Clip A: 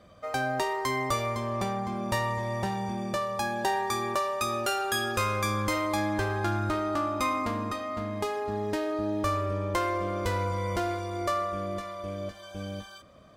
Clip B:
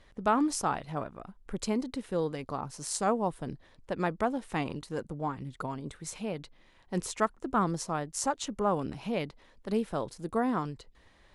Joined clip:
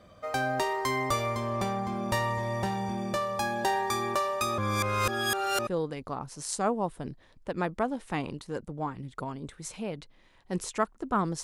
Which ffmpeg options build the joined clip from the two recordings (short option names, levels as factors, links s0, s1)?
-filter_complex "[0:a]apad=whole_dur=11.43,atrim=end=11.43,asplit=2[s0][s1];[s0]atrim=end=4.582[s2];[s1]atrim=start=4.578:end=5.672,asetpts=PTS-STARTPTS,areverse[s3];[1:a]atrim=start=2.088:end=7.85[s4];[s2][s3]acrossfade=d=0.004:c1=hsin:c2=hsin[s5];[s5][s4]acrossfade=d=0.004:c1=hsin:c2=hsin"